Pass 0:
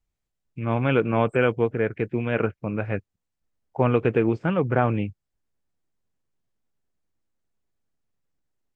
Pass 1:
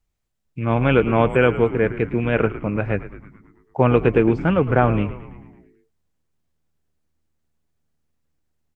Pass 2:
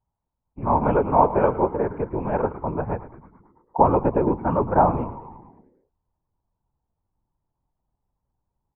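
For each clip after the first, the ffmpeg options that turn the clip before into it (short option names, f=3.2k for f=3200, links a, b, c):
-filter_complex "[0:a]asplit=8[a][b][c][d][e][f][g][h];[b]adelay=110,afreqshift=-78,volume=-14dB[i];[c]adelay=220,afreqshift=-156,volume=-18.3dB[j];[d]adelay=330,afreqshift=-234,volume=-22.6dB[k];[e]adelay=440,afreqshift=-312,volume=-26.9dB[l];[f]adelay=550,afreqshift=-390,volume=-31.2dB[m];[g]adelay=660,afreqshift=-468,volume=-35.5dB[n];[h]adelay=770,afreqshift=-546,volume=-39.8dB[o];[a][i][j][k][l][m][n][o]amix=inputs=8:normalize=0,volume=4.5dB"
-af "afftfilt=real='hypot(re,im)*cos(2*PI*random(0))':imag='hypot(re,im)*sin(2*PI*random(1))':win_size=512:overlap=0.75,lowpass=f=920:t=q:w=6.5"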